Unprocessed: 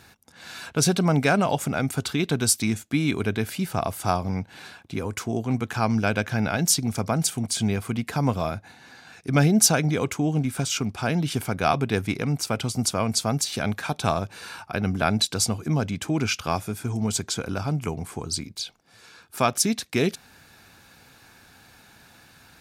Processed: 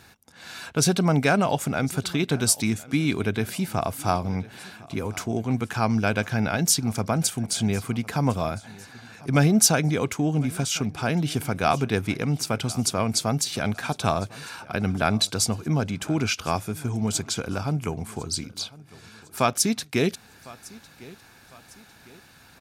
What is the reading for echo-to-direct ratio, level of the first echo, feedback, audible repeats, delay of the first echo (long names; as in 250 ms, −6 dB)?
−20.5 dB, −21.5 dB, 43%, 2, 1,054 ms